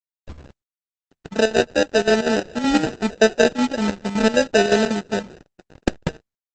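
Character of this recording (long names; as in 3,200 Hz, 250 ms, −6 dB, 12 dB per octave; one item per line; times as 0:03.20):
a quantiser's noise floor 8 bits, dither none
chopped level 5.3 Hz, depth 65%, duty 70%
aliases and images of a low sample rate 1,100 Hz, jitter 0%
Opus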